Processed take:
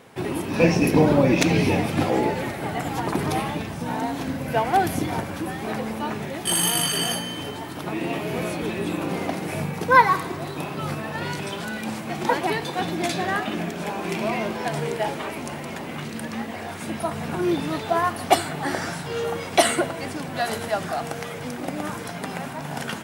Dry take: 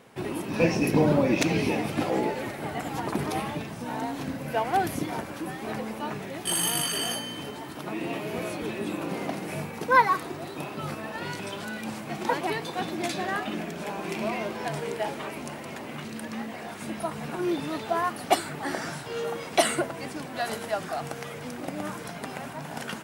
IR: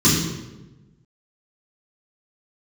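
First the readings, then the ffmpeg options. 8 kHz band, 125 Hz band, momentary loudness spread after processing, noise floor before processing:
+4.5 dB, +6.5 dB, 12 LU, -39 dBFS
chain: -filter_complex "[0:a]asplit=2[s0][s1];[1:a]atrim=start_sample=2205,asetrate=25137,aresample=44100[s2];[s1][s2]afir=irnorm=-1:irlink=0,volume=0.0112[s3];[s0][s3]amix=inputs=2:normalize=0,volume=1.68"

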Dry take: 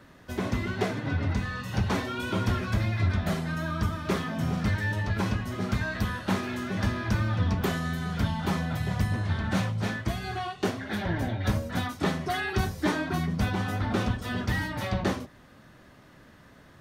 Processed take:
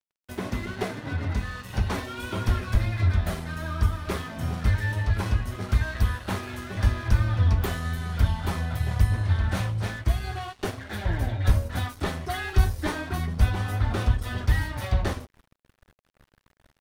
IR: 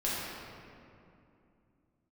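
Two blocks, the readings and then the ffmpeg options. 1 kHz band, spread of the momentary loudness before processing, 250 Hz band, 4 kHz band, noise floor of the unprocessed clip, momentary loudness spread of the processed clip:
-1.5 dB, 4 LU, -4.5 dB, -1.0 dB, -54 dBFS, 8 LU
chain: -af "aexciter=amount=1.6:drive=6:freq=9000,asubboost=boost=11:cutoff=54,aeval=exprs='sgn(val(0))*max(abs(val(0))-0.00668,0)':c=same"

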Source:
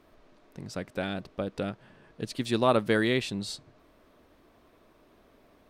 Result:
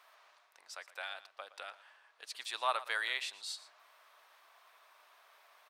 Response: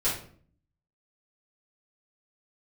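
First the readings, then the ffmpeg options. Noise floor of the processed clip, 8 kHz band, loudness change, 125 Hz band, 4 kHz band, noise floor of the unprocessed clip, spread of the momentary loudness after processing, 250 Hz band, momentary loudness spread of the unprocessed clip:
-68 dBFS, -4.0 dB, -9.5 dB, under -40 dB, -4.0 dB, -62 dBFS, 16 LU, under -35 dB, 16 LU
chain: -af "highpass=f=850:w=0.5412,highpass=f=850:w=1.3066,areverse,acompressor=mode=upward:threshold=0.00316:ratio=2.5,areverse,aecho=1:1:118:0.15,volume=0.631"

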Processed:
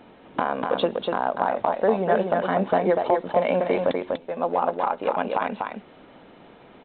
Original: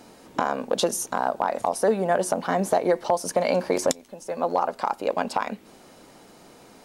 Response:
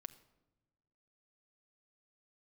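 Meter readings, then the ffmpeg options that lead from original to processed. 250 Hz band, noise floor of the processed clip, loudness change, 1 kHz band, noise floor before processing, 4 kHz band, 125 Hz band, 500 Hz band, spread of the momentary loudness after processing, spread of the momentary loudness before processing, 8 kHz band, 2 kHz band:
+1.5 dB, -50 dBFS, +1.0 dB, +1.5 dB, -51 dBFS, -2.5 dB, +1.5 dB, +1.5 dB, 7 LU, 6 LU, under -40 dB, +1.5 dB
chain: -af "aecho=1:1:244:0.631" -ar 8000 -c:a pcm_alaw

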